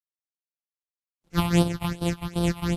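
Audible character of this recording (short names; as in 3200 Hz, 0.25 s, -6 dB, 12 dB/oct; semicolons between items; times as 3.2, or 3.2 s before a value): a buzz of ramps at a fixed pitch in blocks of 256 samples; phasing stages 6, 2.6 Hz, lowest notch 420–2000 Hz; a quantiser's noise floor 12-bit, dither none; Vorbis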